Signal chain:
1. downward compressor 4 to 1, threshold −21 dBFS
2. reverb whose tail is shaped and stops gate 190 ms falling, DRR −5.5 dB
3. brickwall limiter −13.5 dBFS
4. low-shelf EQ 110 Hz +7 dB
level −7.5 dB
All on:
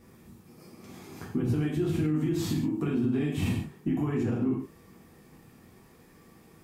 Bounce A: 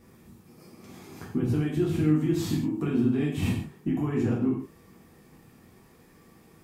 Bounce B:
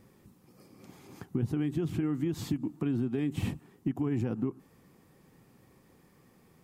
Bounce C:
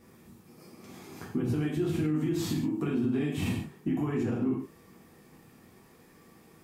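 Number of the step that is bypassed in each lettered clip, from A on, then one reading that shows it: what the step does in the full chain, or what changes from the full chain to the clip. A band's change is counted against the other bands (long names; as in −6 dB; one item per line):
3, change in crest factor +3.0 dB
2, change in momentary loudness spread −10 LU
4, 125 Hz band −2.5 dB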